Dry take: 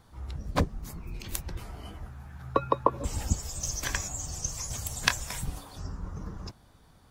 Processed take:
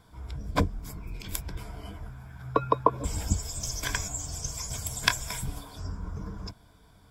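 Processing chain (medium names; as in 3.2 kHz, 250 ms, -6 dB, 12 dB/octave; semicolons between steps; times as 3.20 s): rippled EQ curve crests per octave 1.7, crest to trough 8 dB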